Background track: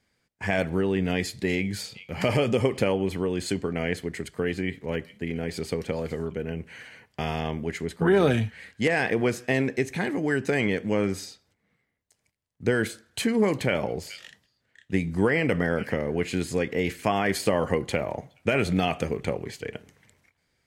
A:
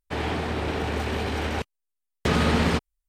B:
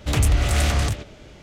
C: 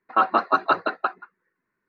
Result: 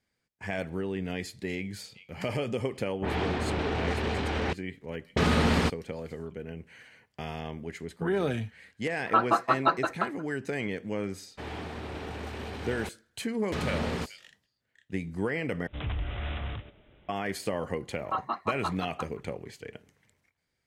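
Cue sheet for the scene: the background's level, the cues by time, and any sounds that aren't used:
background track -8 dB
2.91 add A -2.5 dB + low-pass opened by the level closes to 360 Hz, open at -21 dBFS
8.97 add C -5.5 dB + comb 6 ms, depth 66%
11.27 add A -10.5 dB
15.67 replace with B -14.5 dB + careless resampling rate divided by 6×, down none, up filtered
17.95 add C -13.5 dB + comb 1 ms

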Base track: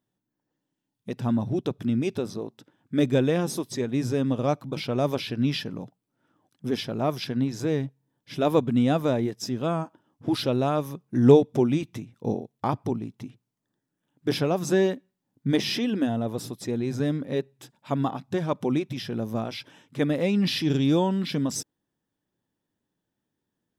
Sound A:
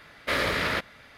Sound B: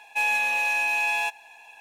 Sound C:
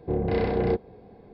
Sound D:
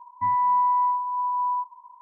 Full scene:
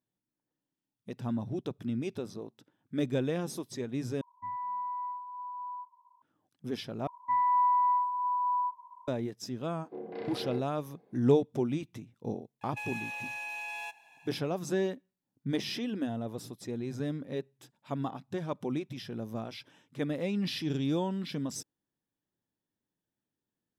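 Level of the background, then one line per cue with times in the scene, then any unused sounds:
base track -8.5 dB
4.21 replace with D -15 dB
7.07 replace with D -2.5 dB + HPF 740 Hz 6 dB/oct
9.84 add C -13.5 dB + HPF 230 Hz 24 dB/oct
12.61 add B -10 dB + compressor, threshold -26 dBFS
not used: A

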